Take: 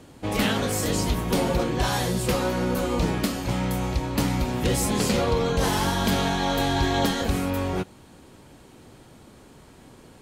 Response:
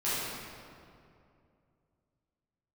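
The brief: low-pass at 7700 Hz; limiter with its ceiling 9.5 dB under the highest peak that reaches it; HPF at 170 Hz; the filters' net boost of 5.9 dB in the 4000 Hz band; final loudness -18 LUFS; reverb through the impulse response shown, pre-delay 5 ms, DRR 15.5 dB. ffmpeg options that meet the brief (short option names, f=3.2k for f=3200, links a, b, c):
-filter_complex "[0:a]highpass=170,lowpass=7.7k,equalizer=f=4k:t=o:g=7.5,alimiter=limit=-17.5dB:level=0:latency=1,asplit=2[a][b];[1:a]atrim=start_sample=2205,adelay=5[c];[b][c]afir=irnorm=-1:irlink=0,volume=-25dB[d];[a][d]amix=inputs=2:normalize=0,volume=8.5dB"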